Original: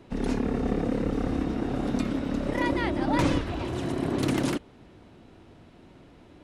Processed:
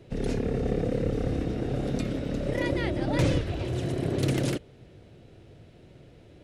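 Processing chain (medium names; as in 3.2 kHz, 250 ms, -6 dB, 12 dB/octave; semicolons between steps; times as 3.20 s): ten-band graphic EQ 125 Hz +7 dB, 250 Hz -7 dB, 500 Hz +6 dB, 1 kHz -11 dB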